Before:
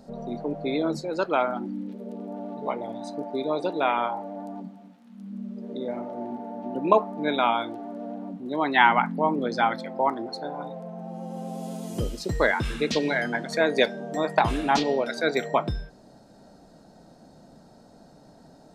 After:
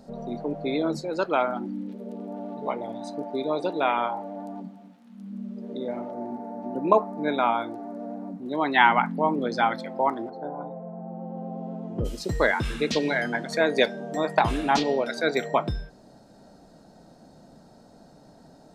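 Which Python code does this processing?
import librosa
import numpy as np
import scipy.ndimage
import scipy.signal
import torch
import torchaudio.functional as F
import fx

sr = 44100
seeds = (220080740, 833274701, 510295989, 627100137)

y = fx.peak_eq(x, sr, hz=3100.0, db=-9.5, octaves=0.62, at=(6.11, 8.42))
y = fx.lowpass(y, sr, hz=1100.0, slope=12, at=(10.29, 12.04), fade=0.02)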